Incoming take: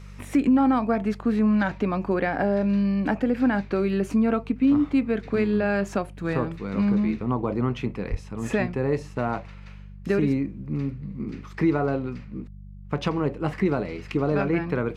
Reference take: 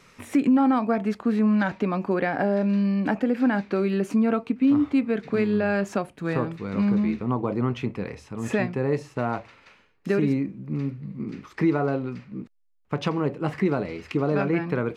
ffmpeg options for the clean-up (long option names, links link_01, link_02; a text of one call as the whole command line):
ffmpeg -i in.wav -filter_complex "[0:a]bandreject=frequency=49.1:width_type=h:width=4,bandreject=frequency=98.2:width_type=h:width=4,bandreject=frequency=147.3:width_type=h:width=4,bandreject=frequency=196.4:width_type=h:width=4,asplit=3[link_01][link_02][link_03];[link_01]afade=type=out:start_time=8.1:duration=0.02[link_04];[link_02]highpass=frequency=140:width=0.5412,highpass=frequency=140:width=1.3066,afade=type=in:start_time=8.1:duration=0.02,afade=type=out:start_time=8.22:duration=0.02[link_05];[link_03]afade=type=in:start_time=8.22:duration=0.02[link_06];[link_04][link_05][link_06]amix=inputs=3:normalize=0" out.wav